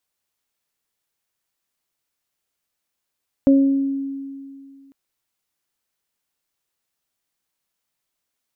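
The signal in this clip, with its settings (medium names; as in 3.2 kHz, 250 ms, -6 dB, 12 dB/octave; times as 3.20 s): additive tone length 1.45 s, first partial 274 Hz, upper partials -8 dB, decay 2.30 s, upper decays 0.66 s, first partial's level -9 dB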